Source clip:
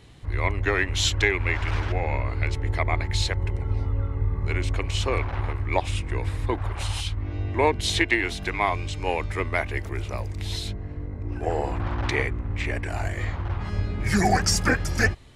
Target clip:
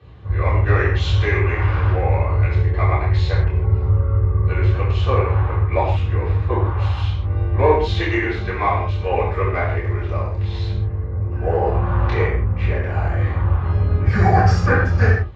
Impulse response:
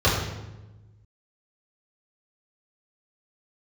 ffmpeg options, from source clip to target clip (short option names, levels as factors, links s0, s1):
-filter_complex "[0:a]aemphasis=mode=reproduction:type=50kf,asplit=2[s0][s1];[s1]highpass=f=720:p=1,volume=2.82,asoftclip=type=tanh:threshold=0.501[s2];[s0][s2]amix=inputs=2:normalize=0,lowpass=f=1900:p=1,volume=0.501[s3];[1:a]atrim=start_sample=2205,afade=t=out:st=0.22:d=0.01,atrim=end_sample=10143[s4];[s3][s4]afir=irnorm=-1:irlink=0,volume=0.178"